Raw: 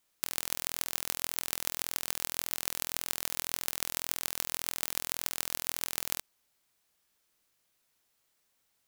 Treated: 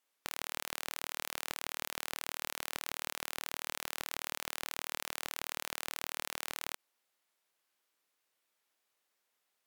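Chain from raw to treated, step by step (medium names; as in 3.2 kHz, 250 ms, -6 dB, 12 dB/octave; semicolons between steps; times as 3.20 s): high-pass 160 Hz 6 dB/octave; tone controls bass -11 dB, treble -5 dB; waveshaping leveller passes 3; peak limiter -16.5 dBFS, peak gain reduction 10.5 dB; speed mistake 48 kHz file played as 44.1 kHz; trim +3 dB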